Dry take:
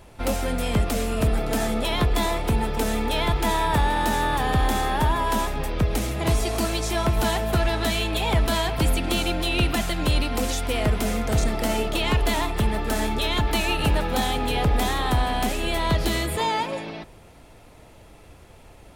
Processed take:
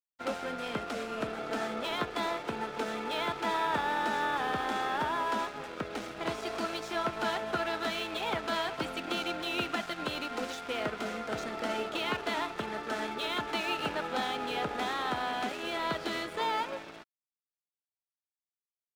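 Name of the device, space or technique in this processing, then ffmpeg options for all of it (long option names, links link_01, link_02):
pocket radio on a weak battery: -af "highpass=270,lowpass=4400,aeval=exprs='sgn(val(0))*max(abs(val(0))-0.0112,0)':channel_layout=same,equalizer=frequency=1400:width_type=o:width=0.31:gain=7.5,volume=-6dB"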